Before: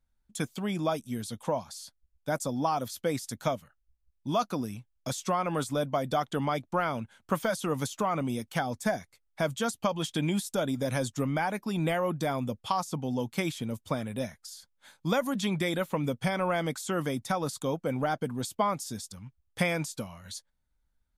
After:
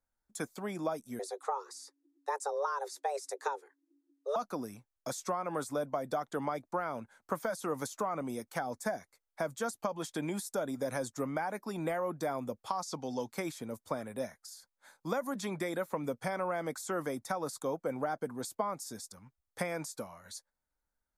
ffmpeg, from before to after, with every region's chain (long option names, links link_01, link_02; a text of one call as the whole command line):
ffmpeg -i in.wav -filter_complex "[0:a]asettb=1/sr,asplit=3[link_01][link_02][link_03];[link_01]atrim=end=1.194[link_04];[link_02]atrim=start=1.19:end=4.36,asetpts=PTS-STARTPTS,afade=type=in:duration=0.004:curve=qsin,afade=type=out:start_time=3.166:duration=0.004:curve=qsin,afreqshift=280,lowpass=frequency=10000:width=0.5412,lowpass=frequency=10000:width=1.3066[link_05];[link_03]atrim=start=4.356[link_06];[link_04][link_05]acrossfade=duration=0.004:curve1=hsin:curve2=qsin[link_07];[link_07][link_06]acrossfade=duration=0.004:curve1=qsin:curve2=hsin,asettb=1/sr,asplit=3[link_08][link_09][link_10];[link_08]atrim=end=12.824[link_11];[link_09]atrim=start=12.82:end=13.32,asetpts=PTS-STARTPTS,afade=type=in:duration=0.004:curve=qsin,afade=type=out:start_time=0.496:duration=0.004:curve=qsin,lowpass=frequency=4600:width_type=q:width=1.7,aemphasis=mode=production:type=75fm[link_12];[link_10]atrim=start=13.316[link_13];[link_11][link_12]acrossfade=duration=0.004:curve1=hsin:curve2=qsin[link_14];[link_14][link_13]acrossfade=duration=0.004:curve1=qsin:curve2=hsin,bass=frequency=250:gain=-14,treble=frequency=4000:gain=-3,acrossover=split=270[link_15][link_16];[link_16]acompressor=threshold=-30dB:ratio=6[link_17];[link_15][link_17]amix=inputs=2:normalize=0,equalizer=frequency=3000:width_type=o:width=0.72:gain=-14" out.wav